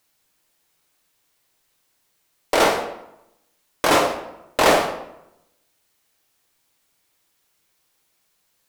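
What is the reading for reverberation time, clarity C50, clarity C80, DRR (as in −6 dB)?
0.85 s, 7.5 dB, 10.0 dB, 2.5 dB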